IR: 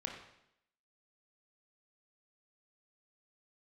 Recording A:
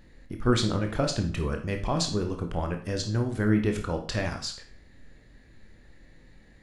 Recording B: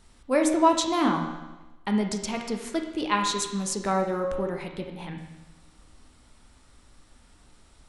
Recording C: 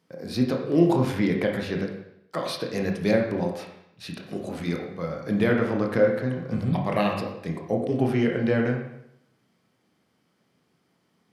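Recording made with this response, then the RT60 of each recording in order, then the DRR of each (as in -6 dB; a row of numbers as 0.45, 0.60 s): C; 0.45, 1.1, 0.75 s; 4.0, 2.5, 0.5 dB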